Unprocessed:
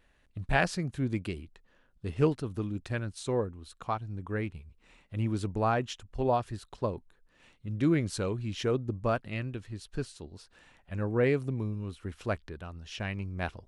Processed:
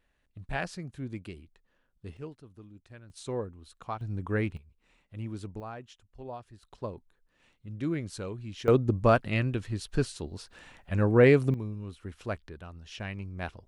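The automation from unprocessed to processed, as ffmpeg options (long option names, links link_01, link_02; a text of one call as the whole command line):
ffmpeg -i in.wav -af "asetnsamples=nb_out_samples=441:pad=0,asendcmd='2.17 volume volume -16.5dB;3.1 volume volume -4dB;4.01 volume volume 4dB;4.57 volume volume -7dB;5.6 volume volume -14dB;6.63 volume volume -5.5dB;8.68 volume volume 7dB;11.54 volume volume -2.5dB',volume=-7dB" out.wav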